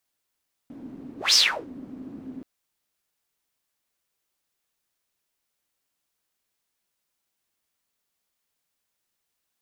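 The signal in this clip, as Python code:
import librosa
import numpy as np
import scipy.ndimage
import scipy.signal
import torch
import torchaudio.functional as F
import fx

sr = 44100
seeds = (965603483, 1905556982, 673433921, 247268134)

y = fx.whoosh(sr, seeds[0], length_s=1.73, peak_s=0.64, rise_s=0.17, fall_s=0.36, ends_hz=260.0, peak_hz=5300.0, q=8.5, swell_db=23.5)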